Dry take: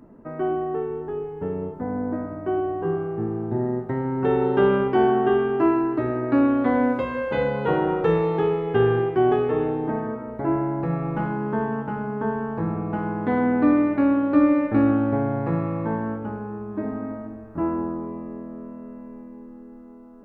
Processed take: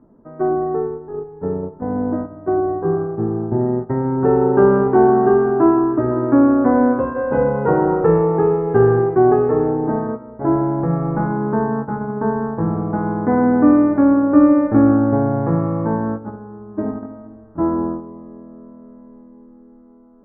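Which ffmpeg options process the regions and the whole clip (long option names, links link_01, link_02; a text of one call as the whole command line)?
ffmpeg -i in.wav -filter_complex "[0:a]asettb=1/sr,asplit=3[link_01][link_02][link_03];[link_01]atrim=end=4.164[link_04];[link_02]atrim=start=4.16:end=7.57,asetpts=PTS-STARTPTS,afade=type=in:duration=0.004:curve=qsin,afade=type=out:start_time=3.406:duration=0.004:curve=qsin,bandreject=frequency=2100:width=6.7,aecho=1:1:503:0.158,atrim=end_sample=150381[link_05];[link_03]atrim=start=7.566[link_06];[link_04][link_05]acrossfade=duration=0.004:curve1=hsin:curve2=qsin[link_07];[link_07][link_06]acrossfade=duration=0.004:curve1=qsin:curve2=hsin,agate=range=-9dB:threshold=-28dB:ratio=16:detection=peak,lowpass=frequency=1600:width=0.5412,lowpass=frequency=1600:width=1.3066,aemphasis=mode=reproduction:type=75fm,volume=5.5dB" out.wav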